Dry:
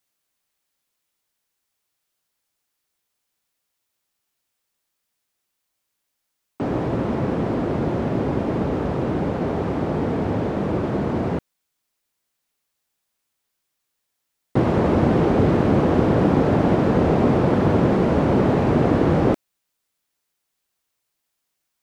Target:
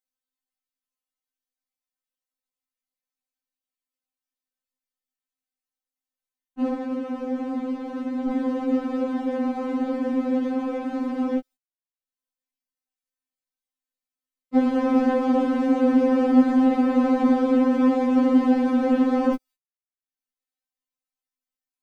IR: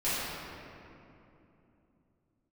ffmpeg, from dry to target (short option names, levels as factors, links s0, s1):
-filter_complex "[0:a]acompressor=mode=upward:threshold=0.0112:ratio=2.5,agate=range=0.0224:threshold=0.00562:ratio=16:detection=peak,lowshelf=f=230:g=10,asettb=1/sr,asplit=3[s0][s1][s2];[s0]atrim=end=6.734[s3];[s1]atrim=start=6.73:end=8.29,asetpts=PTS-STARTPTS,afade=t=in:d=0.004:c=qsin,afade=t=out:st=1.556:d=0.004:c=qsin,acrossover=split=110|780|1900[s4][s5][s6][s7];[s4]acompressor=threshold=0.0398:ratio=4[s8];[s5]acompressor=threshold=0.0891:ratio=4[s9];[s6]acompressor=threshold=0.0126:ratio=4[s10];[s7]acompressor=threshold=0.00355:ratio=4[s11];[s8][s9][s10][s11]amix=inputs=4:normalize=0[s12];[s2]atrim=start=8.286[s13];[s3][s12]acrossfade=d=0.004:c1=hsin:c2=qsin[s14];[s14][s13]acrossfade=d=0.004:c1=qsin:c2=hsin,afftfilt=real='re*3.46*eq(mod(b,12),0)':imag='im*3.46*eq(mod(b,12),0)':win_size=2048:overlap=0.75,volume=0.75"